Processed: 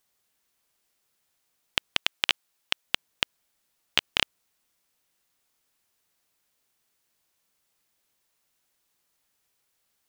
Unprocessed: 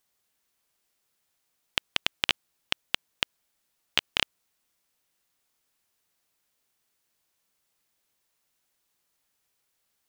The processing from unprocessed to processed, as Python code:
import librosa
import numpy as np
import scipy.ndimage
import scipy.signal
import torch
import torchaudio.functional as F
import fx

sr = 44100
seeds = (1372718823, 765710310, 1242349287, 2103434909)

y = fx.low_shelf(x, sr, hz=340.0, db=-9.0, at=(1.97, 2.87))
y = F.gain(torch.from_numpy(y), 1.5).numpy()